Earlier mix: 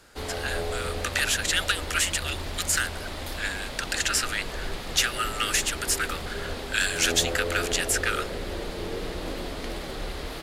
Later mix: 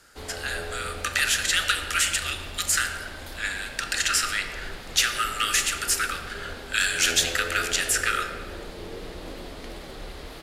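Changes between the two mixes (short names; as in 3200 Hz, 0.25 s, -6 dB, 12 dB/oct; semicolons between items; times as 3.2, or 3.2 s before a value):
background -5.0 dB; reverb: on, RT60 1.4 s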